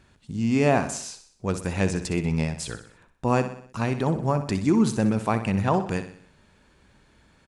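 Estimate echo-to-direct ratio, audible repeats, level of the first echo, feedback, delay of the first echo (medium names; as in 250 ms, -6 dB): -9.5 dB, 5, -11.0 dB, 51%, 62 ms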